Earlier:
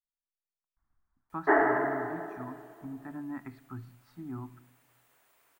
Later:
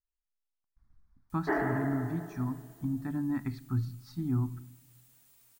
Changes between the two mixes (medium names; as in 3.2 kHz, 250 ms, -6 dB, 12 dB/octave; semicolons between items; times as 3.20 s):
background -9.0 dB; master: remove three-band isolator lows -14 dB, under 350 Hz, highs -17 dB, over 2.4 kHz